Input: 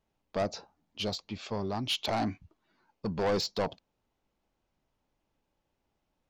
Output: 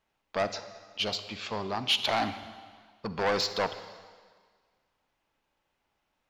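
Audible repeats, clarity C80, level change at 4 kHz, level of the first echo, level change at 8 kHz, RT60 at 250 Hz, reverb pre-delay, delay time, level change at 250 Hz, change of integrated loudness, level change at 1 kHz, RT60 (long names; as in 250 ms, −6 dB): no echo audible, 12.5 dB, +5.5 dB, no echo audible, +2.5 dB, 1.6 s, 38 ms, no echo audible, −3.0 dB, +3.0 dB, +4.0 dB, 1.7 s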